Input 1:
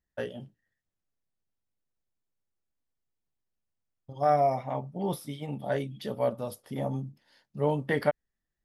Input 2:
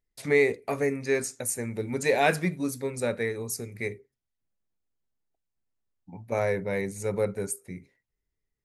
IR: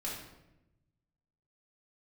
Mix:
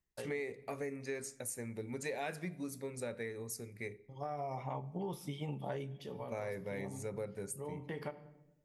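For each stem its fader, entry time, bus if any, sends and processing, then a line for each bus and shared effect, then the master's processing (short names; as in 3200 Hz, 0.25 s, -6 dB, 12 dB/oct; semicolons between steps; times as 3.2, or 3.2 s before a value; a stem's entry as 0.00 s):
-1.5 dB, 0.00 s, send -19.5 dB, ripple EQ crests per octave 0.73, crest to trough 7 dB; compressor, threshold -27 dBFS, peak gain reduction 8 dB; auto duck -12 dB, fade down 0.25 s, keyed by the second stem
-10.0 dB, 0.00 s, send -20.5 dB, dry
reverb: on, RT60 0.95 s, pre-delay 4 ms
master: compressor 4:1, threshold -37 dBFS, peak gain reduction 9 dB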